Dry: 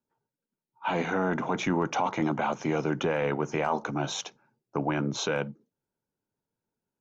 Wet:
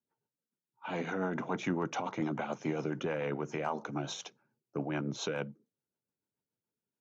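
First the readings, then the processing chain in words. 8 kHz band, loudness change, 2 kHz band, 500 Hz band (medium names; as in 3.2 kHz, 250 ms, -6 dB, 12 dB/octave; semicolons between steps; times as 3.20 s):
no reading, -7.0 dB, -7.5 dB, -6.5 dB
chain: rotary cabinet horn 7 Hz; high-pass 81 Hz; trim -4.5 dB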